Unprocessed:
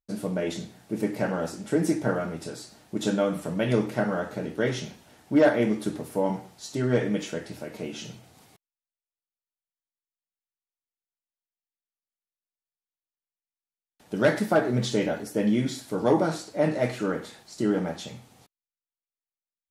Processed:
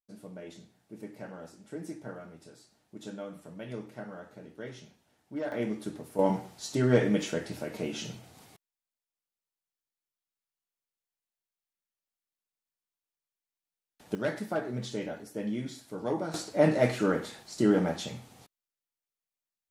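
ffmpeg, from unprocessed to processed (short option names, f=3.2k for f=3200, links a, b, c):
-af "asetnsamples=n=441:p=0,asendcmd='5.52 volume volume -8dB;6.19 volume volume 0.5dB;14.15 volume volume -10dB;16.34 volume volume 1dB',volume=-16dB"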